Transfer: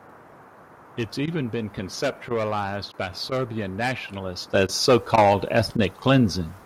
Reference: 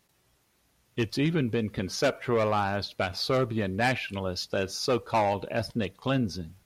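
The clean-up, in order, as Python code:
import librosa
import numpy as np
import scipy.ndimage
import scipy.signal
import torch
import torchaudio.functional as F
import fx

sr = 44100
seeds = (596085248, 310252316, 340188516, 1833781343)

y = fx.fix_interpolate(x, sr, at_s=(1.26, 2.29, 2.92, 3.3, 4.67, 5.16, 5.77), length_ms=15.0)
y = fx.noise_reduce(y, sr, print_start_s=0.41, print_end_s=0.91, reduce_db=20.0)
y = fx.gain(y, sr, db=fx.steps((0.0, 0.0), (4.54, -9.0)))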